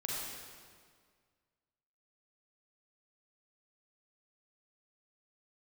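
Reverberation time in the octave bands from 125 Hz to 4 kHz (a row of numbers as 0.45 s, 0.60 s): 2.0 s, 2.0 s, 1.9 s, 1.8 s, 1.7 s, 1.5 s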